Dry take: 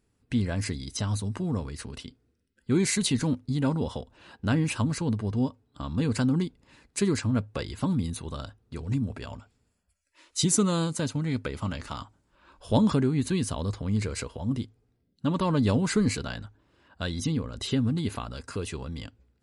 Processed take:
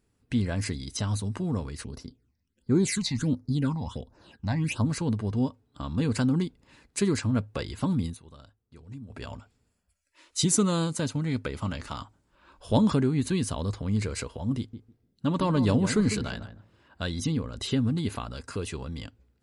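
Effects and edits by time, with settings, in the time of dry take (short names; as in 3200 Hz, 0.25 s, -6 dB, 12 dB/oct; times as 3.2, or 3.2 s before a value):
1.84–4.85 phaser stages 8, 1.4 Hz, lowest notch 390–3100 Hz
8.06–9.2 dip -14 dB, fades 0.12 s
14.58–17.03 darkening echo 0.151 s, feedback 16%, low-pass 1100 Hz, level -9.5 dB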